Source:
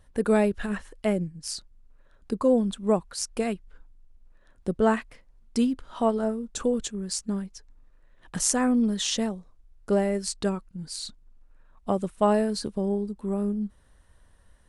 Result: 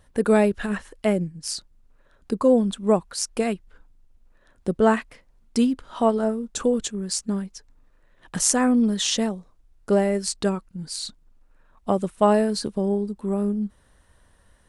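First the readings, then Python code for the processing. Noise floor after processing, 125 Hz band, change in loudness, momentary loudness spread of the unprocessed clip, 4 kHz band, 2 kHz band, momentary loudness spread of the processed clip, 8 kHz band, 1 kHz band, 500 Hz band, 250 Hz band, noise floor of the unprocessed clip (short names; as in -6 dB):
-60 dBFS, +3.0 dB, +3.5 dB, 13 LU, +4.0 dB, +4.0 dB, 13 LU, +4.0 dB, +4.0 dB, +4.0 dB, +3.5 dB, -59 dBFS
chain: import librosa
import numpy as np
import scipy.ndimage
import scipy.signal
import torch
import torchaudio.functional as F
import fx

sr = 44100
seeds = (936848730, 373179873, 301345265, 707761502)

y = fx.low_shelf(x, sr, hz=71.0, db=-7.0)
y = F.gain(torch.from_numpy(y), 4.0).numpy()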